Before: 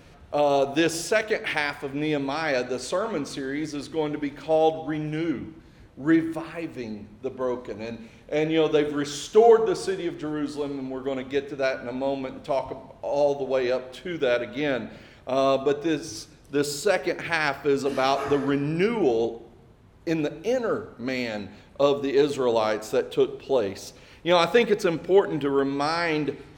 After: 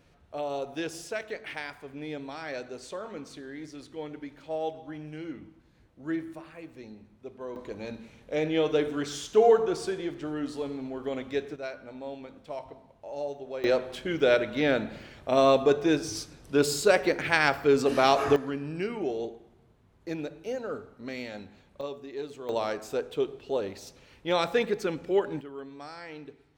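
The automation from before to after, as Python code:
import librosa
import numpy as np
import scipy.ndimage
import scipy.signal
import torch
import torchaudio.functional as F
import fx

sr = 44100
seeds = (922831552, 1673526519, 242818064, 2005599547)

y = fx.gain(x, sr, db=fx.steps((0.0, -11.5), (7.56, -4.0), (11.56, -12.0), (13.64, 1.0), (18.36, -9.0), (21.81, -16.0), (22.49, -6.5), (25.41, -18.0)))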